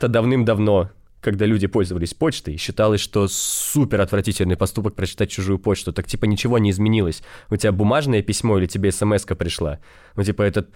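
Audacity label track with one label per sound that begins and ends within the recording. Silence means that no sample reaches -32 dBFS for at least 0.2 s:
1.230000	9.750000	sound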